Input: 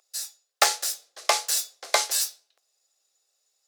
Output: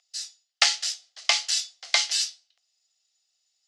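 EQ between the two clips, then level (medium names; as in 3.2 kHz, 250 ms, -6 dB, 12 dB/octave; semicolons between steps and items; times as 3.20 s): dynamic bell 2.7 kHz, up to +4 dB, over -36 dBFS, Q 0.88; cabinet simulation 330–6500 Hz, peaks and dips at 720 Hz +9 dB, 1.3 kHz +3 dB, 2 kHz +7 dB, 3 kHz +9 dB, 4.7 kHz +4 dB; tilt EQ +5 dB/octave; -12.5 dB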